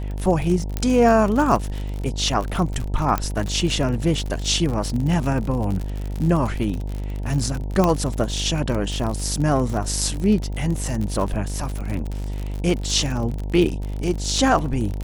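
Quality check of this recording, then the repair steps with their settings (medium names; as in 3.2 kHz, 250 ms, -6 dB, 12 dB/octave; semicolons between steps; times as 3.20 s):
buzz 50 Hz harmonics 19 -27 dBFS
crackle 57 per s -25 dBFS
0.77 s: pop -10 dBFS
3.18 s: pop -9 dBFS
7.84 s: pop -6 dBFS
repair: de-click; de-hum 50 Hz, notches 19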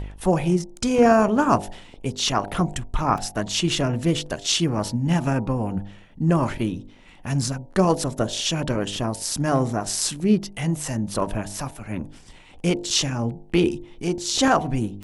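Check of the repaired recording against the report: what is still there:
0.77 s: pop
3.18 s: pop
7.84 s: pop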